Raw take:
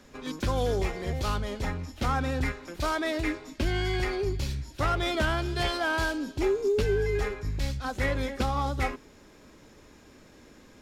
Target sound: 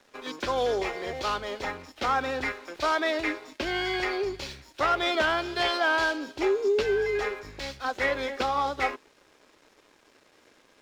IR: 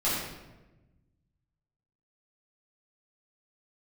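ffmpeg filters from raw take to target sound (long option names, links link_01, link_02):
-filter_complex "[0:a]acrossover=split=330 6200:gain=0.1 1 0.178[link_01][link_02][link_03];[link_01][link_02][link_03]amix=inputs=3:normalize=0,aeval=exprs='sgn(val(0))*max(abs(val(0))-0.00112,0)':channel_layout=same,volume=4.5dB"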